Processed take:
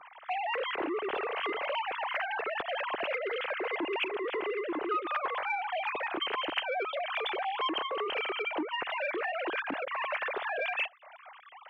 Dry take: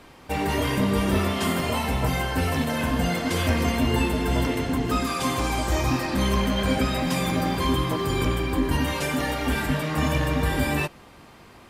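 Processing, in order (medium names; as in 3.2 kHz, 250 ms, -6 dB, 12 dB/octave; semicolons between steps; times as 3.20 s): formants replaced by sine waves; compression 3:1, threshold -33 dBFS, peak gain reduction 15.5 dB; transformer saturation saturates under 590 Hz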